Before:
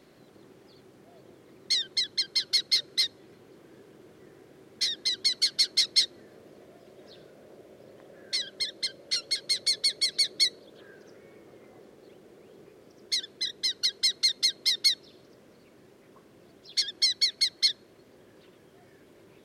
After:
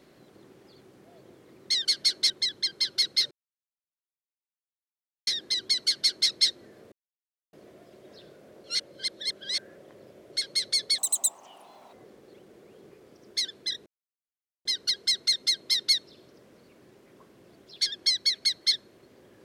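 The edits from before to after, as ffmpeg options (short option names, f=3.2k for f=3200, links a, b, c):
-filter_complex "[0:a]asplit=11[a][b][c][d][e][f][g][h][i][j][k];[a]atrim=end=1.852[l];[b]atrim=start=5.388:end=5.842[m];[c]atrim=start=1.848:end=2.86,asetpts=PTS-STARTPTS,afade=t=out:st=1.008:d=0.004:c=hsin[n];[d]atrim=start=2.86:end=4.82,asetpts=PTS-STARTPTS,volume=0[o];[e]atrim=start=4.82:end=6.47,asetpts=PTS-STARTPTS,afade=t=in:d=0.004:c=hsin,afade=t=out:st=1.646:d=0.004:c=hsin,apad=pad_dur=0.61[p];[f]atrim=start=6.47:end=7.582,asetpts=PTS-STARTPTS,afade=t=in:d=0.004:c=hsin[q];[g]atrim=start=7.578:end=9.272,asetpts=PTS-STARTPTS,areverse[r];[h]atrim=start=9.268:end=9.924[s];[i]atrim=start=9.92:end=11.68,asetpts=PTS-STARTPTS,asetrate=81585,aresample=44100[t];[j]atrim=start=11.676:end=13.61,asetpts=PTS-STARTPTS,afade=t=out:st=1.93:d=0.004:c=hsin,apad=pad_dur=0.79[u];[k]atrim=start=13.61,asetpts=PTS-STARTPTS,afade=t=in:d=0.004:c=hsin[v];[l][m]acrossfade=d=0.004:c1=hsin:c2=hsin[w];[n][o][p][q]concat=n=4:v=0:a=1[x];[w][x]acrossfade=d=0.004:c1=hsin:c2=hsin[y];[y][r]acrossfade=d=0.004:c1=hsin:c2=hsin[z];[z][s]acrossfade=d=0.004:c1=hsin:c2=hsin[aa];[aa][t]acrossfade=d=0.004:c1=hsin:c2=hsin[ab];[u][v]concat=n=2:v=0:a=1[ac];[ab][ac]acrossfade=d=0.004:c1=hsin:c2=hsin"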